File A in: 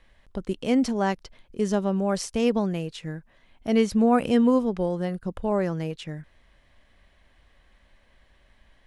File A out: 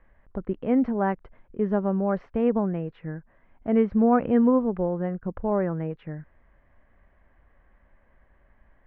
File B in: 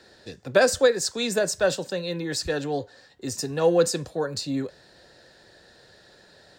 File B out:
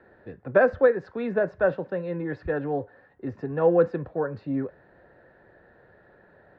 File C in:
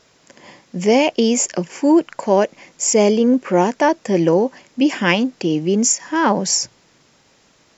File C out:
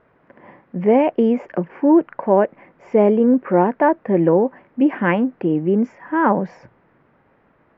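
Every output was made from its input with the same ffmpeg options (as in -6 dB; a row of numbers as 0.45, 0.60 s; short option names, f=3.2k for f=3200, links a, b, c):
-af "lowpass=f=1.8k:w=0.5412,lowpass=f=1.8k:w=1.3066"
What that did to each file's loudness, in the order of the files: 0.0, -1.0, -0.5 LU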